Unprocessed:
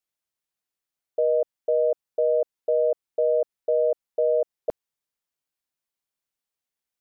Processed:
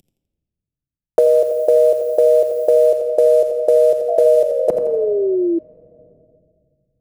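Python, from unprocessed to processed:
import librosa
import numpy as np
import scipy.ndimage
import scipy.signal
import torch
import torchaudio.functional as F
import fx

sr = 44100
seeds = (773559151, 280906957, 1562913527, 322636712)

y = fx.cvsd(x, sr, bps=64000)
y = fx.tilt_shelf(y, sr, db=3.5, hz=840.0)
y = fx.dmg_noise_colour(y, sr, seeds[0], colour='violet', level_db=-58.0, at=(1.19, 2.87), fade=0.02)
y = fx.sample_gate(y, sr, floor_db=-45.5, at=(3.81, 4.55))
y = fx.echo_feedback(y, sr, ms=84, feedback_pct=38, wet_db=-9)
y = fx.room_shoebox(y, sr, seeds[1], volume_m3=2200.0, walls='mixed', distance_m=0.85)
y = fx.spec_paint(y, sr, seeds[2], shape='fall', start_s=4.08, length_s=1.51, low_hz=330.0, high_hz=690.0, level_db=-33.0)
y = fx.band_squash(y, sr, depth_pct=70)
y = F.gain(torch.from_numpy(y), 8.0).numpy()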